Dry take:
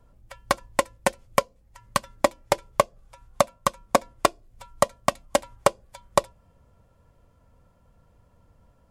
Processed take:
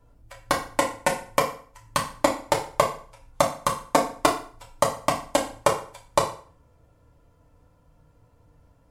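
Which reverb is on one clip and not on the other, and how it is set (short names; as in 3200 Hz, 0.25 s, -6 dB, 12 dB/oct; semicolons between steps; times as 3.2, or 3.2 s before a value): FDN reverb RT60 0.46 s, low-frequency decay 1×, high-frequency decay 0.85×, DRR -1.5 dB; gain -2.5 dB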